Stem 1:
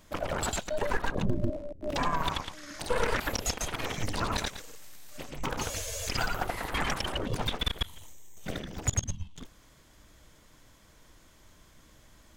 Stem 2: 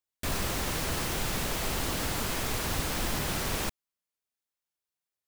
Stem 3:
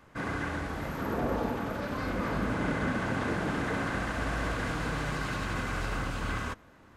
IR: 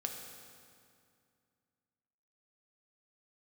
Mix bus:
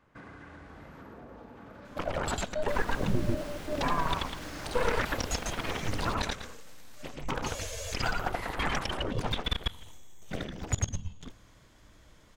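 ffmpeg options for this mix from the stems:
-filter_complex "[0:a]adelay=1850,volume=-0.5dB,asplit=2[link_01][link_02];[link_02]volume=-19.5dB[link_03];[1:a]alimiter=level_in=2dB:limit=-24dB:level=0:latency=1,volume=-2dB,adelay=2450,volume=-7dB[link_04];[2:a]acompressor=threshold=-36dB:ratio=10,volume=-8.5dB[link_05];[3:a]atrim=start_sample=2205[link_06];[link_03][link_06]afir=irnorm=-1:irlink=0[link_07];[link_01][link_04][link_05][link_07]amix=inputs=4:normalize=0,highshelf=frequency=7600:gain=-10"

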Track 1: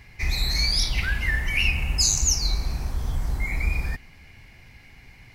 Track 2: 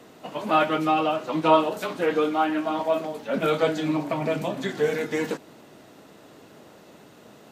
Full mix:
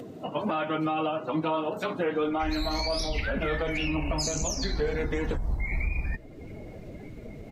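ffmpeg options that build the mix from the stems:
ffmpeg -i stem1.wav -i stem2.wav -filter_complex "[0:a]adelay=2200,volume=-1dB[link_01];[1:a]equalizer=frequency=94:width=1.4:gain=9,volume=2dB[link_02];[link_01][link_02]amix=inputs=2:normalize=0,afftdn=noise_reduction=17:noise_floor=-40,acompressor=mode=upward:threshold=-33dB:ratio=2.5,alimiter=limit=-19.5dB:level=0:latency=1:release=223" out.wav

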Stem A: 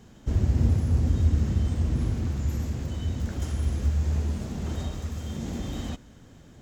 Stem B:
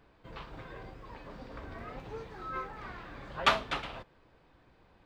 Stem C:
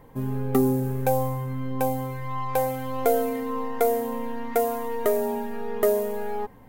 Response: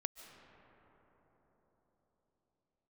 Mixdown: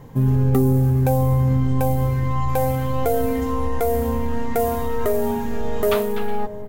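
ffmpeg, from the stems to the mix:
-filter_complex "[0:a]alimiter=limit=-18dB:level=0:latency=1:release=144,volume=-5dB,asplit=2[link_01][link_02];[link_02]volume=-9.5dB[link_03];[1:a]adelay=2450,volume=-3dB[link_04];[2:a]equalizer=frequency=140:width=1.1:gain=10.5,volume=2dB,asplit=2[link_05][link_06];[link_06]volume=-9dB[link_07];[link_01][link_05]amix=inputs=2:normalize=0,asubboost=boost=3:cutoff=74,alimiter=limit=-13.5dB:level=0:latency=1,volume=0dB[link_08];[3:a]atrim=start_sample=2205[link_09];[link_03][link_07]amix=inputs=2:normalize=0[link_10];[link_10][link_09]afir=irnorm=-1:irlink=0[link_11];[link_04][link_08][link_11]amix=inputs=3:normalize=0"

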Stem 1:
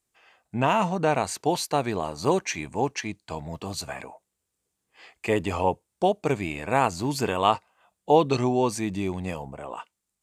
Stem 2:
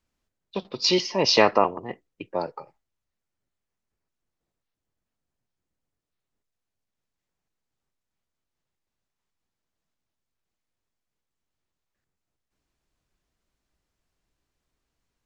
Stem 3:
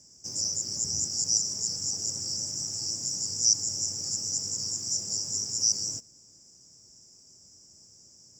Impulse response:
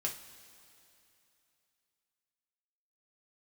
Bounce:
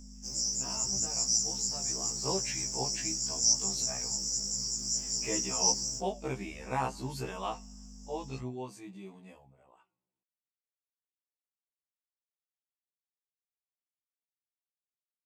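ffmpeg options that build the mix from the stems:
-filter_complex "[0:a]flanger=delay=7.1:depth=2.9:regen=81:speed=0.85:shape=sinusoidal,volume=-4.5dB,afade=type=in:start_time=1.8:duration=0.63:silence=0.237137,afade=type=out:start_time=7.02:duration=0.75:silence=0.398107,afade=type=out:start_time=9.18:duration=0.36:silence=0.398107,asplit=2[link_01][link_02];[link_02]volume=-22.5dB[link_03];[2:a]aeval=exprs='val(0)+0.00708*(sin(2*PI*50*n/s)+sin(2*PI*2*50*n/s)/2+sin(2*PI*3*50*n/s)/3+sin(2*PI*4*50*n/s)/4+sin(2*PI*5*50*n/s)/5)':channel_layout=same,volume=0dB[link_04];[3:a]atrim=start_sample=2205[link_05];[link_03][link_05]afir=irnorm=-1:irlink=0[link_06];[link_01][link_04][link_06]amix=inputs=3:normalize=0,afftfilt=real='re*1.73*eq(mod(b,3),0)':imag='im*1.73*eq(mod(b,3),0)':win_size=2048:overlap=0.75"

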